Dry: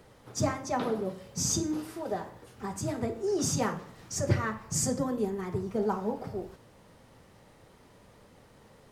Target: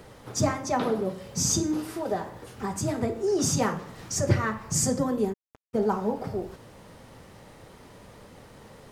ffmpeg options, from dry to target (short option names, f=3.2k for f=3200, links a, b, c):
-filter_complex "[0:a]asplit=2[a][b];[b]acompressor=threshold=-41dB:ratio=20,volume=-2.5dB[c];[a][c]amix=inputs=2:normalize=0,asplit=3[d][e][f];[d]afade=t=out:st=5.32:d=0.02[g];[e]acrusher=bits=2:mix=0:aa=0.5,afade=t=in:st=5.32:d=0.02,afade=t=out:st=5.73:d=0.02[h];[f]afade=t=in:st=5.73:d=0.02[i];[g][h][i]amix=inputs=3:normalize=0,volume=3dB"